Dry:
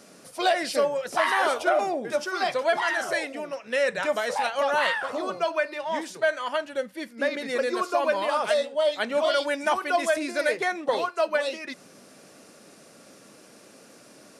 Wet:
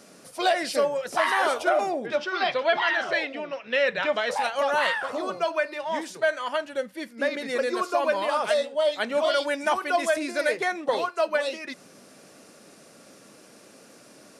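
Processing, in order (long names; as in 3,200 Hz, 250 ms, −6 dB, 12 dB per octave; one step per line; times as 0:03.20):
0:02.06–0:04.31: low-pass with resonance 3,400 Hz, resonance Q 1.8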